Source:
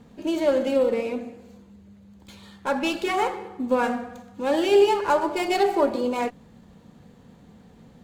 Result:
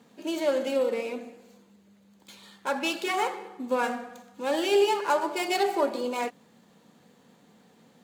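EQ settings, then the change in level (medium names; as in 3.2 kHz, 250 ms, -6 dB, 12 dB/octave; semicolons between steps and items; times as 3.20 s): high-pass 190 Hz 12 dB/octave; tilt EQ +1.5 dB/octave; -3.0 dB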